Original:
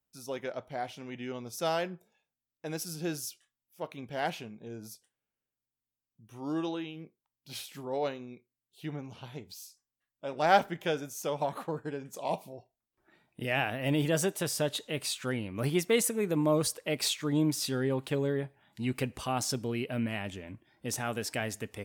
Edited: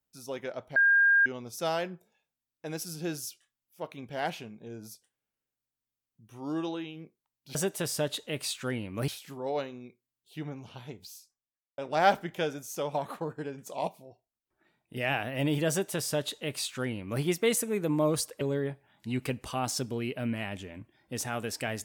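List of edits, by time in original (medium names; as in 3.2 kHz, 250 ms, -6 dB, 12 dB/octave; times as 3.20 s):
0.76–1.26 s: bleep 1.61 kHz -18.5 dBFS
9.53–10.25 s: studio fade out
12.34–13.43 s: gain -5 dB
14.16–15.69 s: copy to 7.55 s
16.88–18.14 s: delete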